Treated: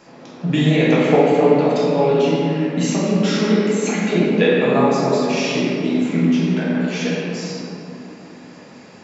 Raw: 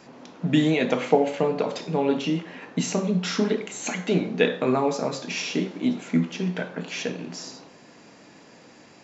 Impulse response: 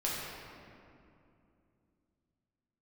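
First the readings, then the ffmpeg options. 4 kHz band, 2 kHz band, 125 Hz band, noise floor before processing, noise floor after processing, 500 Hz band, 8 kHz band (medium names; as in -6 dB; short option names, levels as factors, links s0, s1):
+5.5 dB, +7.0 dB, +9.0 dB, -51 dBFS, -41 dBFS, +8.5 dB, no reading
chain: -filter_complex "[1:a]atrim=start_sample=2205[s0];[0:a][s0]afir=irnorm=-1:irlink=0,volume=1.12"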